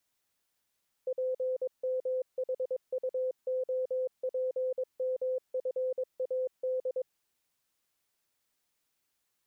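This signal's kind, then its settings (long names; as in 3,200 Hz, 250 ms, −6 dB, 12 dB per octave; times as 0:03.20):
Morse code "PMHUOPMFAD" 22 words per minute 513 Hz −28.5 dBFS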